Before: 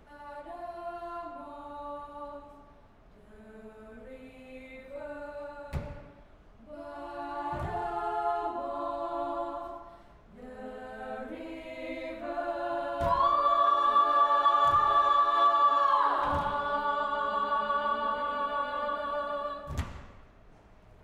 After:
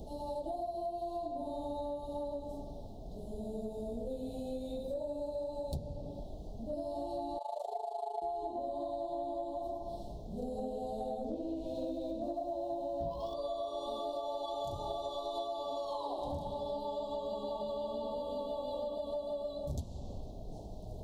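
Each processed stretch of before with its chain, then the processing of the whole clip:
7.38–8.22 s: steep high-pass 430 Hz 96 dB/octave + AM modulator 26 Hz, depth 70%
11.24–13.34 s: distance through air 220 m + waveshaping leveller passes 1 + doubling 18 ms -5 dB
whole clip: elliptic band-stop 740–3900 Hz, stop band 70 dB; compression 12:1, threshold -47 dBFS; trim +12 dB

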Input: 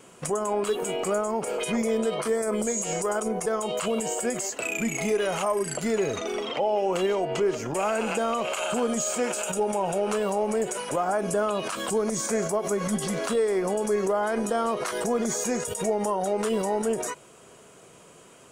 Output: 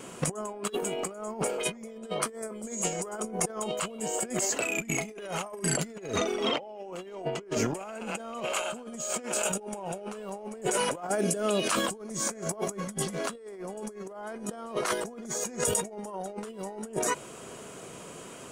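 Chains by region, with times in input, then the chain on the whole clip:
11.09–11.71 s: high-pass 280 Hz 6 dB/octave + peaking EQ 1 kHz -14.5 dB 1.2 oct
whole clip: peaking EQ 240 Hz +3 dB 0.83 oct; compressor with a negative ratio -32 dBFS, ratio -0.5

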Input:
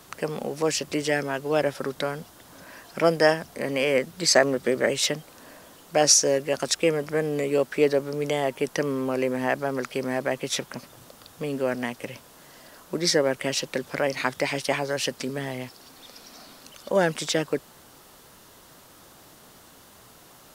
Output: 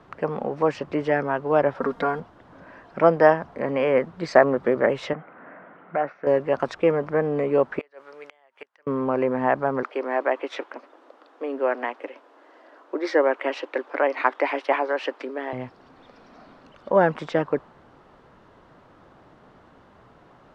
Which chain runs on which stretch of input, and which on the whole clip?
1.80–2.20 s: treble shelf 7.1 kHz +9 dB + comb 4.3 ms, depth 77%
5.13–6.27 s: compression 2:1, threshold -33 dBFS + cabinet simulation 180–2500 Hz, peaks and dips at 180 Hz +6 dB, 720 Hz +4 dB, 1.4 kHz +10 dB, 2.1 kHz +8 dB
7.79–8.87 s: high-pass 1.1 kHz + treble shelf 8.1 kHz +5 dB + inverted gate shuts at -21 dBFS, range -26 dB
9.83–15.53 s: elliptic high-pass 290 Hz, stop band 50 dB + dynamic bell 2.6 kHz, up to +5 dB, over -41 dBFS, Q 0.96
whole clip: low-pass 1.6 kHz 12 dB/octave; dynamic bell 1 kHz, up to +7 dB, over -41 dBFS, Q 1.3; trim +1.5 dB

